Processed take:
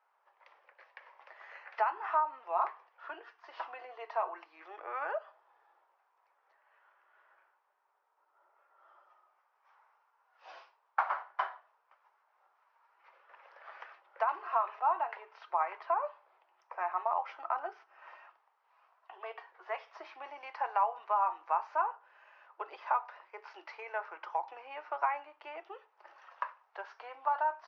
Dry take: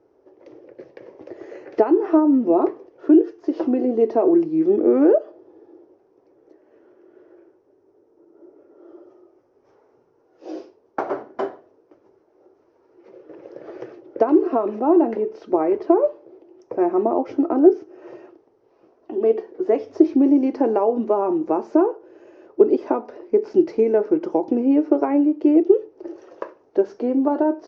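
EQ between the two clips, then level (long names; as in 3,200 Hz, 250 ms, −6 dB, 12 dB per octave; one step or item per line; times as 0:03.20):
Chebyshev high-pass filter 1,000 Hz, order 3
flat-topped band-pass 1,500 Hz, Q 0.54
high-frequency loss of the air 55 metres
+2.0 dB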